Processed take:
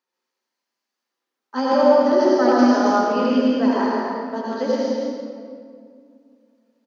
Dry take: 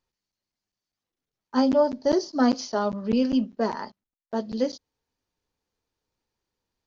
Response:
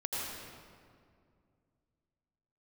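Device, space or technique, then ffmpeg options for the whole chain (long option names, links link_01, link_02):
stadium PA: -filter_complex "[0:a]highpass=frequency=230:width=0.5412,highpass=frequency=230:width=1.3066,equalizer=frequency=1500:width_type=o:width=1.6:gain=5,aecho=1:1:177.8|212.8:0.355|0.355[link_01];[1:a]atrim=start_sample=2205[link_02];[link_01][link_02]afir=irnorm=-1:irlink=0,asettb=1/sr,asplit=3[link_03][link_04][link_05];[link_03]atrim=end=2.084[link_06];[link_04]atrim=start=2.08:end=2.86,asetpts=PTS-STARTPTS,afade=type=in:duration=0.004:curve=qsin,afade=type=out:start_time=0.776:duration=0.004:curve=qsin,lowpass=5500[link_07];[link_05]atrim=start=2.856[link_08];[link_06][link_07]acrossfade=duration=0.004:curve1=hsin:curve2=qsin[link_09];[link_09][link_08]acrossfade=duration=0.004:curve1=qsin:curve2=hsin"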